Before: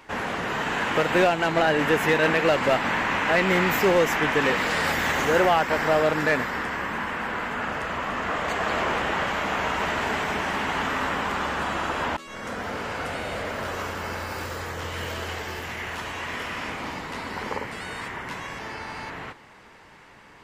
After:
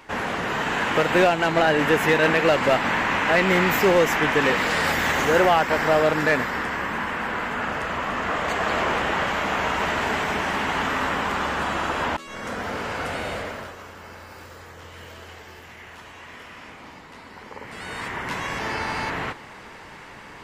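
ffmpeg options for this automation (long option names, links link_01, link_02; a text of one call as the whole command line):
ffmpeg -i in.wav -af "volume=20dB,afade=type=out:start_time=13.28:duration=0.47:silence=0.251189,afade=type=in:start_time=17.54:duration=0.41:silence=0.266073,afade=type=in:start_time=17.95:duration=0.82:silence=0.473151" out.wav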